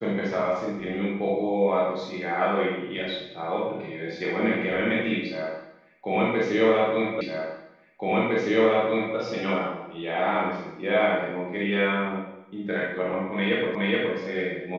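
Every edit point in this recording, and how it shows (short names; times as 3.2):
7.21 repeat of the last 1.96 s
13.75 repeat of the last 0.42 s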